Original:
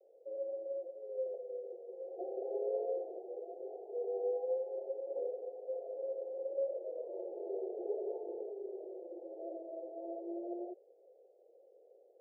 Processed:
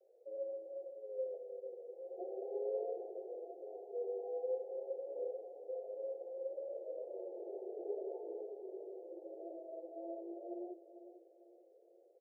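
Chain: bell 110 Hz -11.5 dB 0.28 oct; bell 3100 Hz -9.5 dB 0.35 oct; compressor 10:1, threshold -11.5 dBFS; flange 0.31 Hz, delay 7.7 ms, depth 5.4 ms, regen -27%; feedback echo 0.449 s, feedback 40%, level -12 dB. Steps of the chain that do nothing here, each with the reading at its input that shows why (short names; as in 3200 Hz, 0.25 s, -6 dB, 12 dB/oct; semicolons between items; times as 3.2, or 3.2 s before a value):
bell 110 Hz: input band starts at 300 Hz; bell 3100 Hz: input band ends at 850 Hz; compressor, threshold -11.5 dBFS: input peak -26.5 dBFS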